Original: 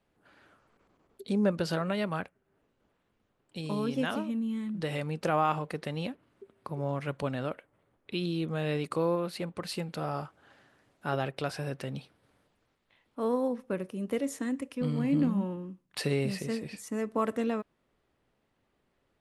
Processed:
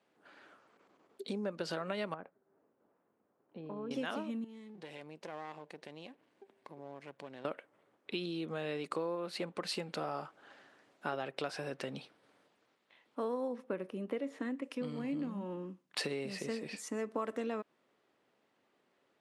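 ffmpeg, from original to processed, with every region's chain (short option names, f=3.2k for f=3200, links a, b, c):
-filter_complex "[0:a]asettb=1/sr,asplit=3[a][b][c];[a]atrim=end=2.144[d];[b]atrim=start=2.14:end=3.91,asetpts=PTS-STARTPTS,afade=t=in:d=0.004:c=qsin,afade=t=out:st=1.766:d=0.004:c=qsin,lowpass=1.1k,acompressor=threshold=-42dB:ratio=2.5:attack=3.2:release=140:knee=1:detection=peak[e];[c]atrim=start=3.906[f];[d][e]acrossfade=d=0.004:c1=hsin:c2=qsin[g];[g][f]acrossfade=d=0.004:c1=qsin:c2=hsin,asettb=1/sr,asplit=3[h][i][j];[h]atrim=end=4.444[k];[i]atrim=start=4.44:end=7.45,asetpts=PTS-STARTPTS,afade=t=in:d=0.004:c=qsin,afade=t=out:st=3.006:d=0.004:c=qsin,aeval=exprs='if(lt(val(0),0),0.251*val(0),val(0))':c=same,acompressor=threshold=-53dB:ratio=2:attack=3.2:release=140:knee=1:detection=peak,equalizer=f=1.3k:t=o:w=0.23:g=-8.5[l];[j]atrim=start=7.446[m];[k][l]acrossfade=d=0.004:c1=hsin:c2=qsin[n];[n][m]acrossfade=d=0.004:c1=qsin:c2=hsin,asettb=1/sr,asplit=3[o][p][q];[o]atrim=end=13.644[r];[p]atrim=start=13.64:end=14.64,asetpts=PTS-STARTPTS,afade=t=in:d=0.004:c=qsin,afade=t=out:st=0.996:d=0.004:c=qsin,acrossover=split=4500[s][t];[t]acompressor=threshold=-58dB:ratio=4:attack=1:release=60[u];[s][u]amix=inputs=2:normalize=0,equalizer=f=6.7k:t=o:w=1.4:g=-8.5[v];[q]atrim=start=14.636[w];[r][v]acrossfade=d=0.004:c1=hsin:c2=qsin[x];[x][w]acrossfade=d=0.004:c1=qsin:c2=hsin,lowpass=8.2k,acompressor=threshold=-34dB:ratio=6,highpass=260,volume=2dB"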